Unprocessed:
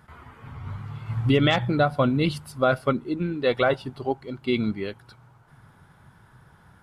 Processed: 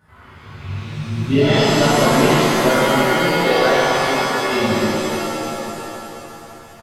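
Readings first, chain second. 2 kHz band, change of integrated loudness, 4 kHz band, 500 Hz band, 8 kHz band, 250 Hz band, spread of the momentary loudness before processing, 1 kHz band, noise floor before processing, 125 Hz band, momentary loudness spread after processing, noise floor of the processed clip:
+11.0 dB, +8.5 dB, +11.5 dB, +8.5 dB, n/a, +7.5 dB, 15 LU, +11.5 dB, -56 dBFS, +5.0 dB, 17 LU, -42 dBFS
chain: rattling part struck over -34 dBFS, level -33 dBFS; echo 0.84 s -15.5 dB; shimmer reverb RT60 2.7 s, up +7 st, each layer -2 dB, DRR -12 dB; gain -7 dB

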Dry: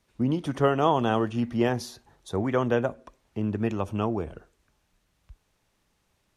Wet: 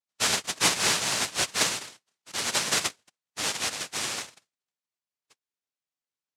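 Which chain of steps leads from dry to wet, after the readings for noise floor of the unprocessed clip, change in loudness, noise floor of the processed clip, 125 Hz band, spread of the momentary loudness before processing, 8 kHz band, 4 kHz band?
-72 dBFS, +0.5 dB, under -85 dBFS, -14.5 dB, 10 LU, +23.5 dB, +15.5 dB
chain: per-bin expansion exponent 1.5; noise vocoder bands 1

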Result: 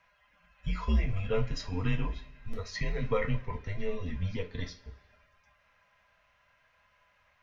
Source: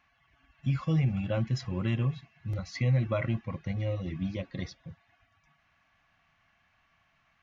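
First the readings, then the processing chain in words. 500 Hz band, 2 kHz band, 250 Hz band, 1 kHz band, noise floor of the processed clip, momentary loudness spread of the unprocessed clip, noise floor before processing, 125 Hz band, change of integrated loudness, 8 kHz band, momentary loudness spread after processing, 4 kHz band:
+1.5 dB, +1.5 dB, -5.0 dB, +2.0 dB, -69 dBFS, 12 LU, -70 dBFS, -5.5 dB, -3.0 dB, n/a, 13 LU, +1.5 dB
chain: frequency shift -96 Hz; two-slope reverb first 0.25 s, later 1.5 s, from -21 dB, DRR 3 dB

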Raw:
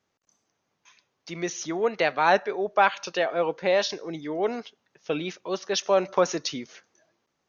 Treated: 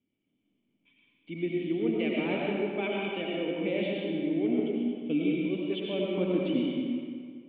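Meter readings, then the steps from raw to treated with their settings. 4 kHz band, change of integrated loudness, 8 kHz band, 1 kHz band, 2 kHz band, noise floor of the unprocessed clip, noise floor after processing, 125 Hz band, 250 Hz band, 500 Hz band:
-6.5 dB, -4.5 dB, n/a, -16.5 dB, -8.5 dB, -78 dBFS, -77 dBFS, +3.5 dB, +6.5 dB, -5.5 dB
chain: vocal tract filter i; digital reverb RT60 2.1 s, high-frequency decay 0.7×, pre-delay 55 ms, DRR -3.5 dB; gain +7.5 dB

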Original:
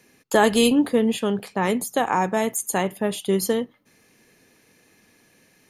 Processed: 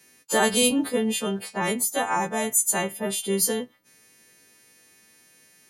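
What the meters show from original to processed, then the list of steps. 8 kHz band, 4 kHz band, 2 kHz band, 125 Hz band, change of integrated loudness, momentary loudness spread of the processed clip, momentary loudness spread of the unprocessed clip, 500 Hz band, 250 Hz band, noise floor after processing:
+6.0 dB, +1.0 dB, -1.0 dB, -4.5 dB, -1.5 dB, 7 LU, 8 LU, -4.5 dB, -5.0 dB, -58 dBFS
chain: frequency quantiser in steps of 2 st; gain -4 dB

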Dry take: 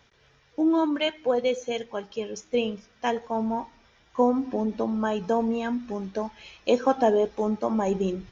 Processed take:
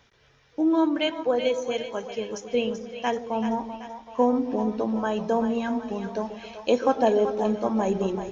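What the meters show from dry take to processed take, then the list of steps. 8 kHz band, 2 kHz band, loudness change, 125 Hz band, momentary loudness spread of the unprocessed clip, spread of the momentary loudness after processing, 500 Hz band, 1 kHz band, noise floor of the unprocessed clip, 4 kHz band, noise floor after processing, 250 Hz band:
n/a, +0.5 dB, +1.0 dB, +0.5 dB, 11 LU, 11 LU, +1.0 dB, +0.5 dB, -61 dBFS, +0.5 dB, -60 dBFS, +1.0 dB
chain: split-band echo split 560 Hz, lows 0.134 s, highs 0.383 s, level -9 dB

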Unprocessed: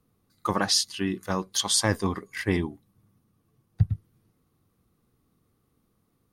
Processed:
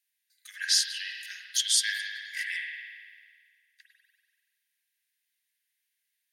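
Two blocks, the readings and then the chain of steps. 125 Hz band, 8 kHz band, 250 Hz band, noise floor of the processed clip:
under -40 dB, 0.0 dB, under -40 dB, -81 dBFS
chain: Chebyshev high-pass 1600 Hz, order 8; spring tank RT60 1.8 s, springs 45 ms, chirp 55 ms, DRR 0 dB

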